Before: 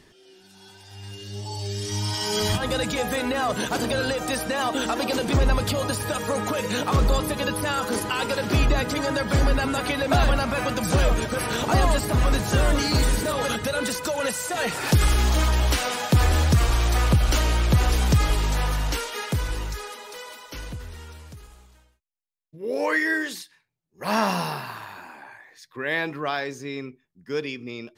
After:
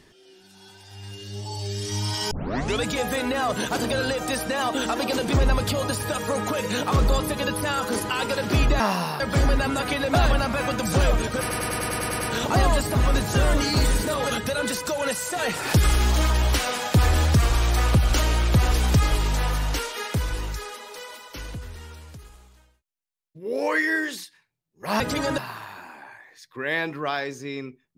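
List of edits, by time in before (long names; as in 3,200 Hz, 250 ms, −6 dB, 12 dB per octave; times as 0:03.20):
0:02.31: tape start 0.53 s
0:08.80–0:09.18: swap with 0:24.18–0:24.58
0:11.38: stutter 0.10 s, 9 plays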